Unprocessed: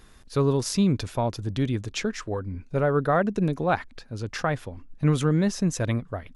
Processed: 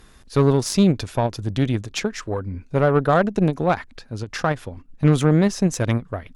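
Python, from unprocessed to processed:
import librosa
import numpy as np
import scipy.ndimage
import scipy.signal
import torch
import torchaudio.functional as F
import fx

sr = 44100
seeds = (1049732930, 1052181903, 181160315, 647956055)

y = fx.cheby_harmonics(x, sr, harmonics=(4, 7), levels_db=(-21, -32), full_scale_db=-10.0)
y = fx.end_taper(y, sr, db_per_s=320.0)
y = F.gain(torch.from_numpy(y), 5.0).numpy()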